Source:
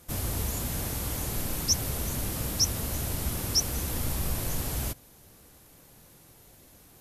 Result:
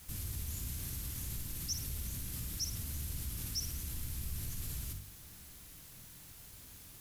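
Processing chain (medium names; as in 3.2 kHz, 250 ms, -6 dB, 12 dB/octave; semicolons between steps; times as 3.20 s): amplifier tone stack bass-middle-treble 6-0-2; de-hum 47.76 Hz, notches 5; in parallel at +2.5 dB: compressor with a negative ratio -54 dBFS, ratio -1; on the sum: word length cut 10-bit, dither triangular; flutter echo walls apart 9.3 m, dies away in 0.37 s; trim +1 dB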